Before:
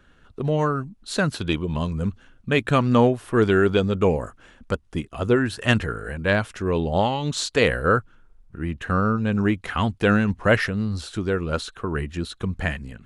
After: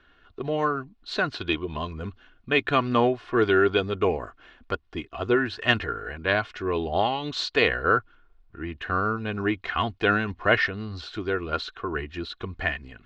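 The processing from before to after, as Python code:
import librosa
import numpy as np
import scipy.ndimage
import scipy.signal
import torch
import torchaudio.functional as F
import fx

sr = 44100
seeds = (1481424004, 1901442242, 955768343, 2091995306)

y = scipy.signal.sosfilt(scipy.signal.butter(4, 4500.0, 'lowpass', fs=sr, output='sos'), x)
y = fx.low_shelf(y, sr, hz=380.0, db=-9.0)
y = y + 0.47 * np.pad(y, (int(2.8 * sr / 1000.0), 0))[:len(y)]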